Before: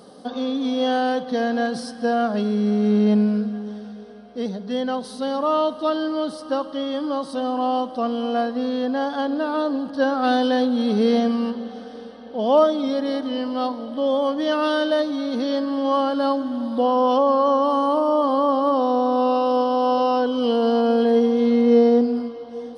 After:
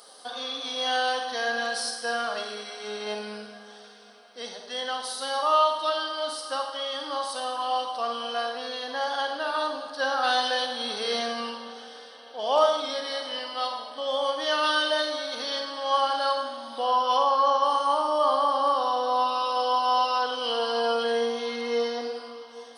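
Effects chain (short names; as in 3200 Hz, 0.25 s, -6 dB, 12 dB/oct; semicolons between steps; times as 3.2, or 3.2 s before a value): HPF 940 Hz 12 dB/oct; high shelf 4700 Hz +8.5 dB; on a send: reverb RT60 0.90 s, pre-delay 38 ms, DRR 3 dB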